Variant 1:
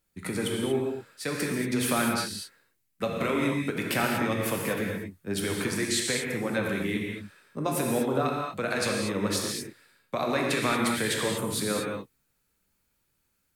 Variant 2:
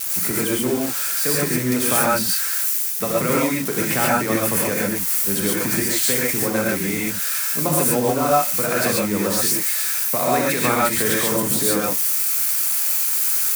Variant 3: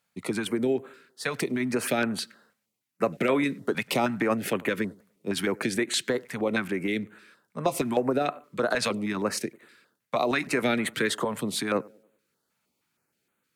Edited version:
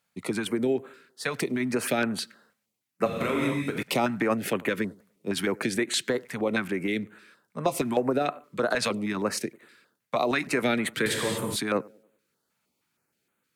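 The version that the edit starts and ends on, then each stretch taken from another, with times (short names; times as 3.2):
3
3.06–3.83 from 1
11.06–11.56 from 1
not used: 2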